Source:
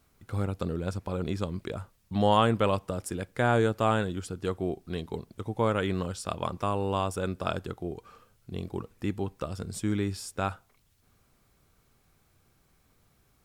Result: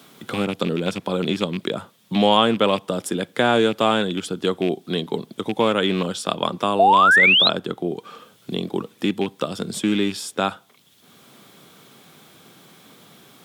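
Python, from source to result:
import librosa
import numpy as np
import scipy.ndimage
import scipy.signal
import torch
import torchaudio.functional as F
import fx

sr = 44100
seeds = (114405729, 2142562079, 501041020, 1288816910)

y = fx.rattle_buzz(x, sr, strikes_db=-29.0, level_db=-31.0)
y = scipy.signal.sosfilt(scipy.signal.butter(4, 170.0, 'highpass', fs=sr, output='sos'), y)
y = fx.peak_eq(y, sr, hz=3400.0, db=11.0, octaves=0.39)
y = fx.spec_paint(y, sr, seeds[0], shape='rise', start_s=6.79, length_s=0.7, low_hz=640.0, high_hz=4200.0, level_db=-19.0)
y = fx.low_shelf(y, sr, hz=430.0, db=3.0)
y = fx.band_squash(y, sr, depth_pct=40)
y = y * librosa.db_to_amplitude(7.0)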